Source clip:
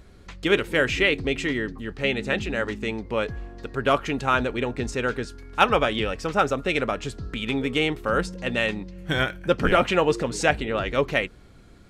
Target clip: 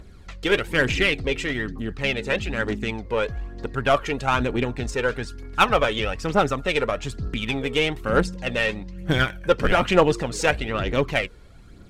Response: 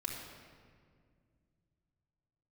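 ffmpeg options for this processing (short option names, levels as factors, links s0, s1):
-af "aphaser=in_gain=1:out_gain=1:delay=2.3:decay=0.48:speed=1.1:type=triangular,aeval=exprs='0.708*(cos(1*acos(clip(val(0)/0.708,-1,1)))-cos(1*PI/2))+0.0282*(cos(8*acos(clip(val(0)/0.708,-1,1)))-cos(8*PI/2))':c=same"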